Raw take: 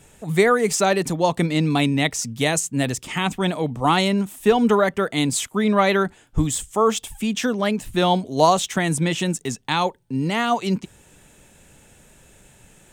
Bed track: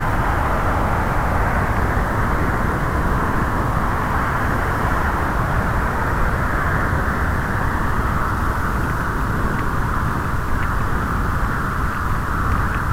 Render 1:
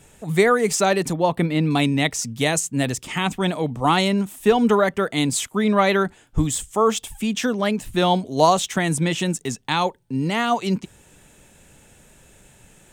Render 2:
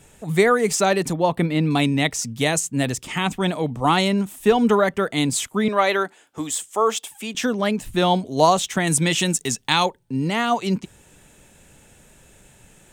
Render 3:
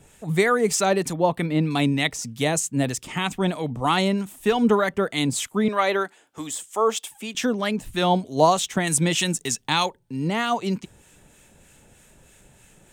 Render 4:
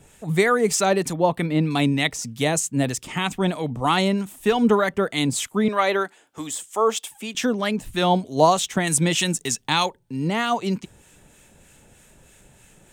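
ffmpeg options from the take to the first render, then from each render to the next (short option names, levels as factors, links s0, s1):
-filter_complex "[0:a]asettb=1/sr,asplit=3[s0][s1][s2];[s0]atrim=end=1.134[s3];[s1]atrim=start=1.13:end=1.71,asetpts=PTS-STARTPTS,afade=t=in:d=0.004:c=qsin,afade=t=out:st=0.576:d=0.004:c=qsin,equalizer=f=6500:t=o:w=1:g=-14[s4];[s2]atrim=start=1.706[s5];[s3][s4]acrossfade=d=0.004:c1=hsin:c2=qsin[s6];[s6][s5]acrossfade=d=0.004:c1=qsin:c2=hsin"
-filter_complex "[0:a]asettb=1/sr,asplit=3[s0][s1][s2];[s0]atrim=end=5.684[s3];[s1]atrim=start=5.68:end=7.35,asetpts=PTS-STARTPTS,afade=t=in:d=0.004:c=qsin,afade=t=out:st=1.666:d=0.004:c=qsin,highpass=380[s4];[s2]atrim=start=7.346[s5];[s3][s4]acrossfade=d=0.004:c1=hsin:c2=qsin[s6];[s6][s5]acrossfade=d=0.004:c1=qsin:c2=hsin,asettb=1/sr,asplit=3[s7][s8][s9];[s7]atrim=end=8.874[s10];[s8]atrim=start=8.87:end=9.86,asetpts=PTS-STARTPTS,afade=t=in:d=0.004:c=qsin,afade=t=out:st=0.986:d=0.004:c=qsin,highshelf=f=2100:g=8[s11];[s9]atrim=start=9.856[s12];[s10][s11]acrossfade=d=0.004:c1=hsin:c2=qsin[s13];[s13][s12]acrossfade=d=0.004:c1=qsin:c2=hsin"
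-filter_complex "[0:a]acrossover=split=1100[s0][s1];[s0]aeval=exprs='val(0)*(1-0.5/2+0.5/2*cos(2*PI*3.2*n/s))':c=same[s2];[s1]aeval=exprs='val(0)*(1-0.5/2-0.5/2*cos(2*PI*3.2*n/s))':c=same[s3];[s2][s3]amix=inputs=2:normalize=0"
-af "volume=1.12"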